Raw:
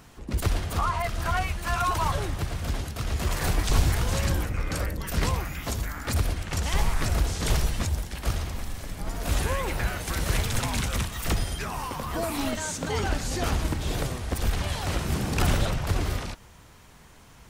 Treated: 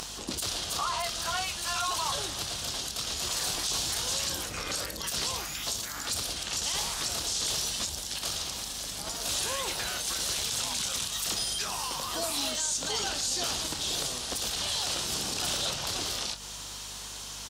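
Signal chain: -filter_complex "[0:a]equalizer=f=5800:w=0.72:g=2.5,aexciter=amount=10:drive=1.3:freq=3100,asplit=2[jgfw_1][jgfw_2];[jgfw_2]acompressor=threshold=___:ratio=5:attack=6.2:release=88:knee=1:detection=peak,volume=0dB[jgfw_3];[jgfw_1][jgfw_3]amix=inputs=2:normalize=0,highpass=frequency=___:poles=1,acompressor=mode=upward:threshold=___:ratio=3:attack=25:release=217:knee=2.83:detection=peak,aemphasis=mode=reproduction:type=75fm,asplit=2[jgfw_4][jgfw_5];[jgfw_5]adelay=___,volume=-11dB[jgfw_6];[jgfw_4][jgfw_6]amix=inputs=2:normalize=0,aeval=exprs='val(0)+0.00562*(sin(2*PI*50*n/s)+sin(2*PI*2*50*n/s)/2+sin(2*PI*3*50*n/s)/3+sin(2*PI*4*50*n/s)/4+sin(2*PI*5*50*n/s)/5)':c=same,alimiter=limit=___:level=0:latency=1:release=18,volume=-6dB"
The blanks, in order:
-26dB, 630, -19dB, 28, -14.5dB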